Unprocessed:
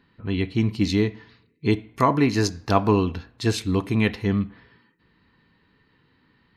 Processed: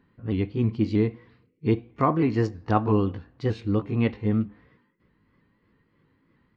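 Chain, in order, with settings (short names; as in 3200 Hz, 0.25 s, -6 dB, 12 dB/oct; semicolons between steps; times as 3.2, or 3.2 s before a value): repeated pitch sweeps +2 st, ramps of 0.318 s; tape spacing loss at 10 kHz 34 dB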